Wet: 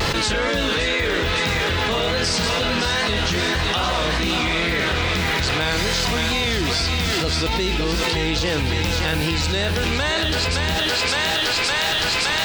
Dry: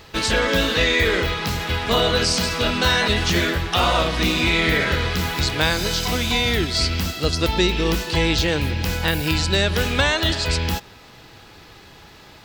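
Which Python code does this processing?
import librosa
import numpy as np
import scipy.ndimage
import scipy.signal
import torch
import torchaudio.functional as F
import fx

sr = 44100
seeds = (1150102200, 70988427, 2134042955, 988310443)

y = fx.peak_eq(x, sr, hz=14000.0, db=-15.0, octaves=0.27)
y = fx.vibrato(y, sr, rate_hz=2.4, depth_cents=70.0)
y = fx.echo_thinned(y, sr, ms=565, feedback_pct=63, hz=420.0, wet_db=-6)
y = fx.env_flatten(y, sr, amount_pct=100)
y = y * librosa.db_to_amplitude(-6.0)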